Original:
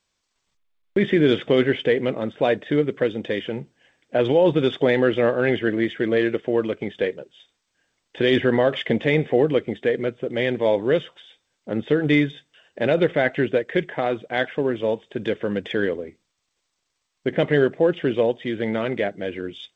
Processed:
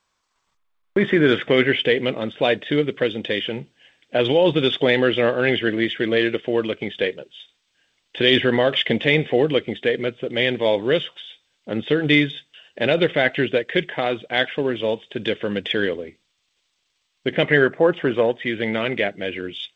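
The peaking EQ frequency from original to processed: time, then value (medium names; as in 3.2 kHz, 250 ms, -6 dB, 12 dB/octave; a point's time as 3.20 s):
peaking EQ +10 dB 1.2 oct
1.05 s 1.1 kHz
1.90 s 3.1 kHz
17.32 s 3.1 kHz
17.96 s 930 Hz
18.61 s 2.7 kHz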